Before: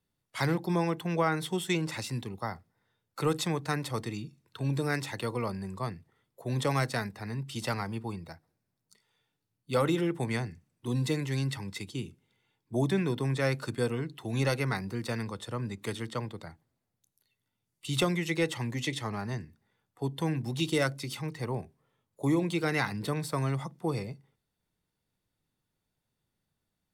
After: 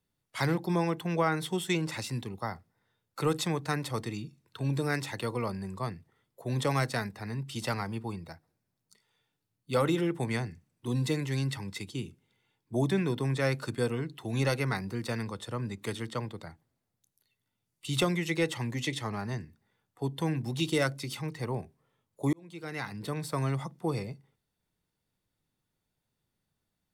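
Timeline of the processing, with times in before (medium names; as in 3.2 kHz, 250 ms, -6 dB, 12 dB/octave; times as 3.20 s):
22.33–23.44 s: fade in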